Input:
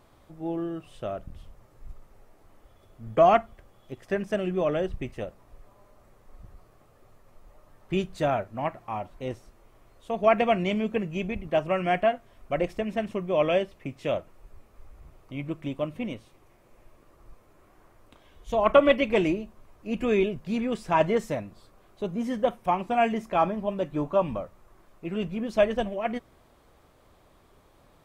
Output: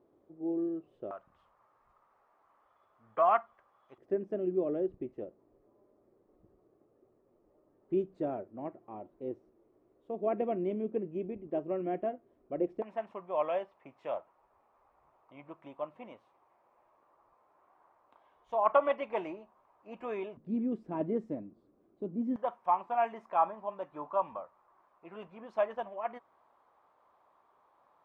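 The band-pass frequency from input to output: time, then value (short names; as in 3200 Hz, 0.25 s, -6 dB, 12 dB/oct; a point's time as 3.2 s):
band-pass, Q 2.7
370 Hz
from 1.11 s 1100 Hz
from 3.98 s 350 Hz
from 12.82 s 910 Hz
from 20.37 s 290 Hz
from 22.36 s 970 Hz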